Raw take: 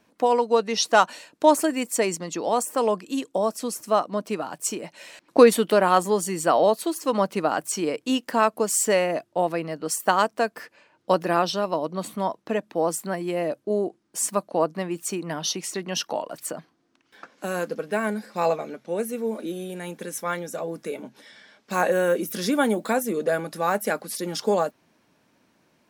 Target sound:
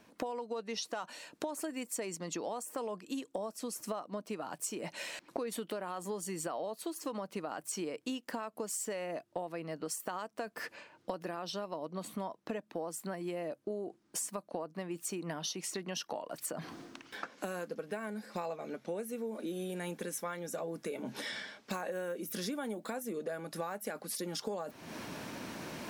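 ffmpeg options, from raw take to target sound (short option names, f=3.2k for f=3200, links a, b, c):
-af "areverse,acompressor=mode=upward:threshold=-28dB:ratio=2.5,areverse,alimiter=limit=-13.5dB:level=0:latency=1:release=64,acompressor=threshold=-37dB:ratio=10,volume=1.5dB"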